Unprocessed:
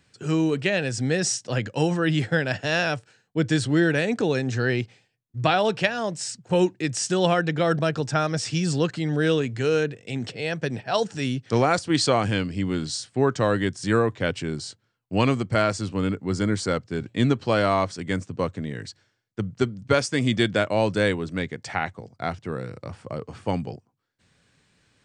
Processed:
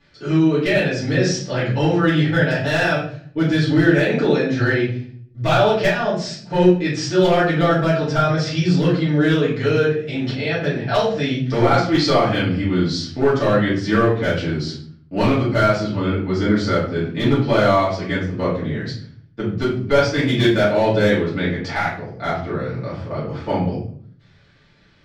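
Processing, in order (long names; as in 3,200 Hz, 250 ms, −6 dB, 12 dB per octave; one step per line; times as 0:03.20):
low-pass filter 4,900 Hz 24 dB per octave
notch filter 2,800 Hz, Q 21
in parallel at −2 dB: downward compressor 16 to 1, threshold −30 dBFS, peak gain reduction 16 dB
on the sum: gain into a clipping stage and back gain 11.5 dB
rectangular room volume 68 cubic metres, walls mixed, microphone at 2.5 metres
level −7 dB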